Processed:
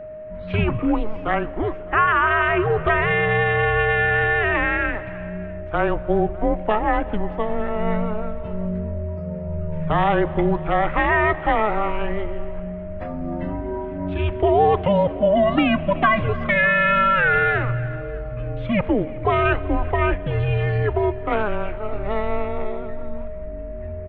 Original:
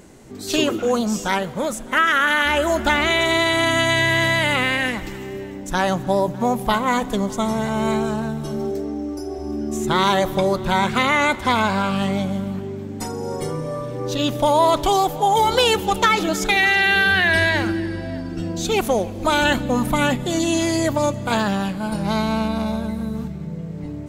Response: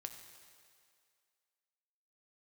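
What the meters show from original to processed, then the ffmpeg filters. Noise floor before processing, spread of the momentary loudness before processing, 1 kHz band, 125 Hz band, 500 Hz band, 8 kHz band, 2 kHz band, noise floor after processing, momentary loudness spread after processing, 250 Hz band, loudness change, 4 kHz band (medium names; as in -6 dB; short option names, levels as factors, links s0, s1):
-32 dBFS, 12 LU, -1.5 dB, +2.5 dB, +0.5 dB, under -40 dB, -1.5 dB, -32 dBFS, 13 LU, -3.0 dB, -1.5 dB, -13.0 dB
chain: -af "highpass=f=160:t=q:w=0.5412,highpass=f=160:t=q:w=1.307,lowpass=f=2700:t=q:w=0.5176,lowpass=f=2700:t=q:w=0.7071,lowpass=f=2700:t=q:w=1.932,afreqshift=-210,aecho=1:1:374:0.075,aeval=exprs='val(0)+0.0224*sin(2*PI*620*n/s)':c=same"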